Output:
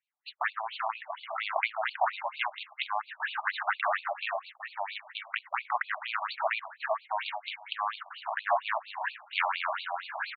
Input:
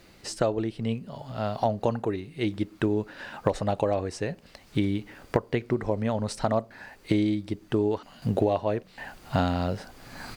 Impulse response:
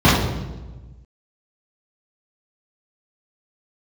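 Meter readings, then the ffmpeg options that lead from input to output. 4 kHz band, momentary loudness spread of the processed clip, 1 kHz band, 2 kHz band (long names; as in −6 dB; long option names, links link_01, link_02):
+3.0 dB, 8 LU, +3.0 dB, +8.5 dB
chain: -filter_complex "[0:a]acrossover=split=4300[link_01][link_02];[link_02]acompressor=threshold=-54dB:ratio=4:attack=1:release=60[link_03];[link_01][link_03]amix=inputs=2:normalize=0,acrossover=split=1100[link_04][link_05];[link_04]alimiter=limit=-19dB:level=0:latency=1:release=24[link_06];[link_06][link_05]amix=inputs=2:normalize=0,highshelf=frequency=2700:gain=-5,aecho=1:1:384|768|1152:0.376|0.0677|0.0122,aeval=exprs='0.224*sin(PI/2*3.55*val(0)/0.224)':channel_layout=same,agate=range=-42dB:threshold=-27dB:ratio=16:detection=peak,lowshelf=frequency=400:gain=-11,afftfilt=real='re*between(b*sr/1024,830*pow(3300/830,0.5+0.5*sin(2*PI*4.3*pts/sr))/1.41,830*pow(3300/830,0.5+0.5*sin(2*PI*4.3*pts/sr))*1.41)':imag='im*between(b*sr/1024,830*pow(3300/830,0.5+0.5*sin(2*PI*4.3*pts/sr))/1.41,830*pow(3300/830,0.5+0.5*sin(2*PI*4.3*pts/sr))*1.41)':win_size=1024:overlap=0.75"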